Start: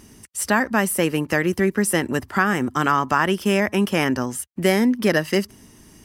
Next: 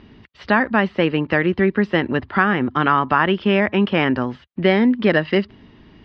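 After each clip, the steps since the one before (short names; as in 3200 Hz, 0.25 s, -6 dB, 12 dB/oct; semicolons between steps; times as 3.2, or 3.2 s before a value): steep low-pass 4100 Hz 48 dB/oct; gain +2.5 dB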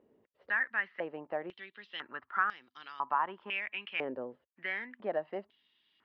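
stepped band-pass 2 Hz 510–4700 Hz; gain -8 dB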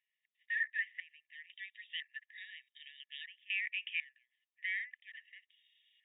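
soft clip -28.5 dBFS, distortion -10 dB; brick-wall FIR band-pass 1700–3800 Hz; gain +2 dB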